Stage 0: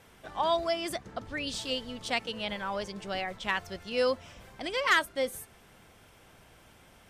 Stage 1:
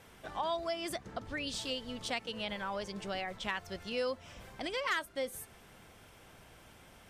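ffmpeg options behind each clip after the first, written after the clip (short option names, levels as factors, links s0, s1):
-af "acompressor=threshold=0.0141:ratio=2"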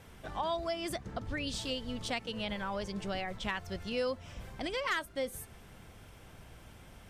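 -af "lowshelf=f=180:g=10"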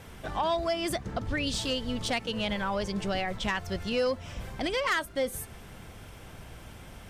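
-af "aeval=exprs='0.0944*sin(PI/2*1.41*val(0)/0.0944)':c=same"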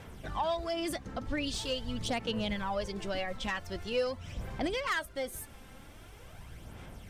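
-af "aphaser=in_gain=1:out_gain=1:delay=3.8:decay=0.46:speed=0.44:type=sinusoidal,volume=0.531"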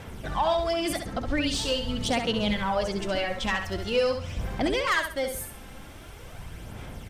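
-af "aecho=1:1:67|134|201|268:0.473|0.142|0.0426|0.0128,volume=2.11"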